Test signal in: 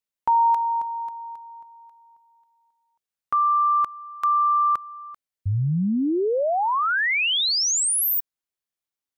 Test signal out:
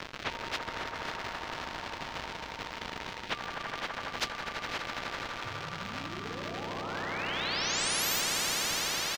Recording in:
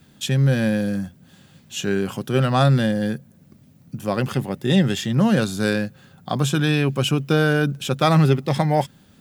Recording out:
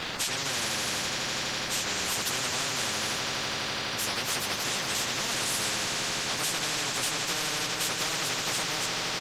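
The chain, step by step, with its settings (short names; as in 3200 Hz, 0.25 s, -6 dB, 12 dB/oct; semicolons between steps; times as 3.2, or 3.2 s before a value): phase scrambler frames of 50 ms; tilt +4 dB/oct; downsampling 32000 Hz; compressor 6:1, threshold -25 dBFS; crackle 240/s -40 dBFS; air absorption 220 m; swelling echo 83 ms, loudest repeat 5, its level -16 dB; spectral compressor 10:1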